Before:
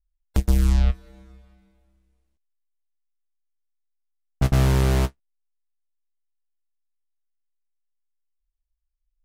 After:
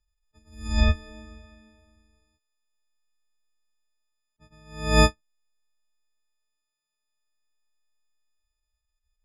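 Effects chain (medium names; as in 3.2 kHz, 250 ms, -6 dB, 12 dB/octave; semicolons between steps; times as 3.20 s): partials quantised in pitch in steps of 6 st; distance through air 94 m; attacks held to a fixed rise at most 110 dB/s; trim +5 dB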